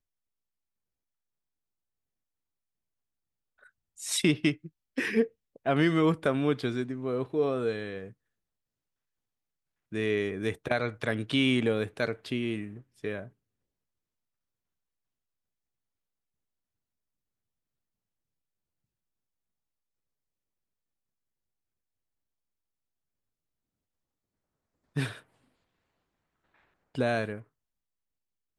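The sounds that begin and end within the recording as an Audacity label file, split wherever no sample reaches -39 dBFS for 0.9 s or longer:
4.000000	8.080000	sound
9.930000	13.250000	sound
24.960000	25.180000	sound
26.950000	27.390000	sound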